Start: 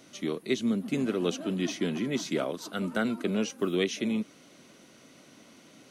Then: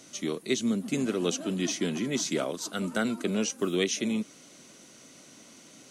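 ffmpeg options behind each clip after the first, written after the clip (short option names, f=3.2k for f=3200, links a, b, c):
-af "equalizer=f=7.4k:w=1:g=10.5"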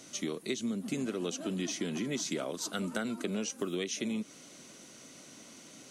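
-af "acompressor=threshold=-31dB:ratio=6"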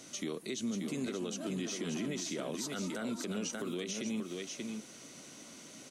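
-af "aecho=1:1:582:0.447,alimiter=level_in=4.5dB:limit=-24dB:level=0:latency=1:release=60,volume=-4.5dB"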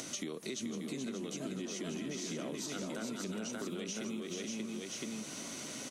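-filter_complex "[0:a]acompressor=mode=upward:threshold=-48dB:ratio=2.5,asplit=2[a][b];[b]aecho=0:1:429:0.668[c];[a][c]amix=inputs=2:normalize=0,acompressor=threshold=-44dB:ratio=6,volume=6.5dB"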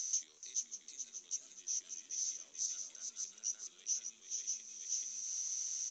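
-af "asoftclip=type=tanh:threshold=-31.5dB,bandpass=f=6.1k:t=q:w=9.1:csg=0,volume=11dB" -ar 16000 -c:a pcm_alaw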